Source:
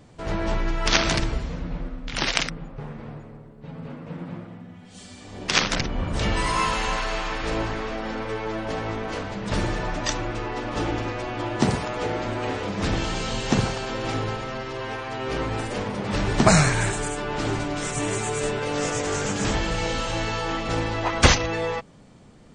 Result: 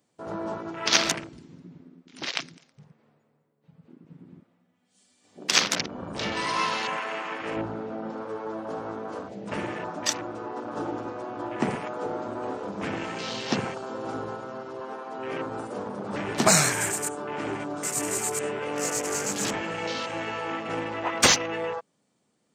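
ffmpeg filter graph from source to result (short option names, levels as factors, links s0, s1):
-filter_complex "[0:a]asettb=1/sr,asplit=3[s0][s1][s2];[s0]atrim=end=1.124[s3];[s1]atrim=start=1.12:end=5.24,asetpts=PTS-STARTPTS,afade=t=in:d=0.004:c=qsin,afade=t=out:st=4.116:d=0.004:c=qsin,flanger=delay=4.9:depth=6.5:regen=86:speed=1.7:shape=triangular,aecho=1:1:207|414:0.211|0.038,atrim=end_sample=181692[s4];[s2]atrim=start=5.236[s5];[s3][s4]acrossfade=d=0.004:c1=hsin:c2=qsin[s6];[s6][s5]acrossfade=d=0.004:c1=qsin:c2=hsin,asettb=1/sr,asplit=3[s7][s8][s9];[s7]atrim=end=7.564[s10];[s8]atrim=start=7.56:end=8.1,asetpts=PTS-STARTPTS,afade=t=in:d=0.004:c=qsin,afade=t=out:st=0.536:d=0.004:c=qsin,bass=f=250:g=8,treble=f=4000:g=-9,bandreject=f=1100:w=5.1[s11];[s9]atrim=start=8.096[s12];[s10][s11]acrossfade=d=0.004:c1=hsin:c2=qsin[s13];[s13][s12]acrossfade=d=0.004:c1=qsin:c2=hsin,highpass=200,aemphasis=mode=production:type=50fm,afwtdn=0.0316,volume=0.708"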